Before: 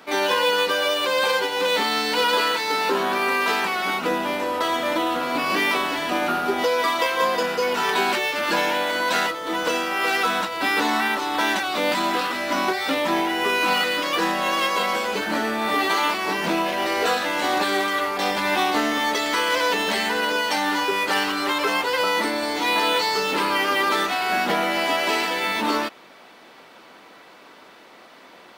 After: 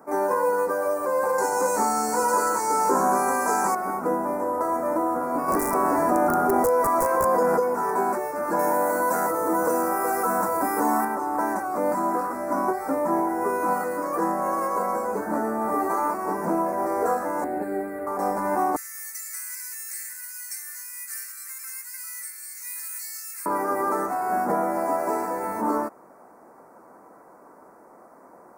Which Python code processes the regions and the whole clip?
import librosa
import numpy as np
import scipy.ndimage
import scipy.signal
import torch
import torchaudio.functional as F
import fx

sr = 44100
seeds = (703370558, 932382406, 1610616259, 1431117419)

y = fx.chain(x, sr, fx.peak_eq(hz=6900.0, db=15.0, octaves=1.2),
    fx.doubler(ms=19.0, db=-5),
    fx.env_flatten(amount_pct=50), at=(1.38, 3.75))
y = fx.chain(y, sr, fx.overflow_wrap(gain_db=12.5),
    fx.env_flatten(amount_pct=100), at=(5.48, 7.6))
y = fx.chain(y, sr, fx.highpass(hz=42.0, slope=12),
    fx.high_shelf(hz=6900.0, db=10.0),
    fx.env_flatten(amount_pct=70), at=(8.59, 11.05))
y = fx.chain(y, sr, fx.high_shelf(hz=5600.0, db=-7.0),
    fx.fixed_phaser(hz=2600.0, stages=4), at=(17.44, 18.07))
y = fx.chain(y, sr, fx.steep_highpass(hz=2000.0, slope=36),
    fx.high_shelf(hz=3500.0, db=10.5), at=(18.76, 23.46))
y = scipy.signal.sosfilt(scipy.signal.cheby1(2, 1.0, [1000.0, 9400.0], 'bandstop', fs=sr, output='sos'), y)
y = fx.high_shelf(y, sr, hz=8500.0, db=-3.5)